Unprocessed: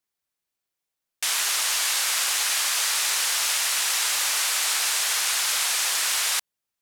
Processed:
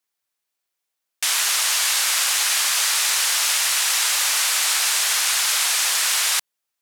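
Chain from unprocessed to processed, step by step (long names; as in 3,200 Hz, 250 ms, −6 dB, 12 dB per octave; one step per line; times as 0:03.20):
low-shelf EQ 270 Hz −11.5 dB
level +4 dB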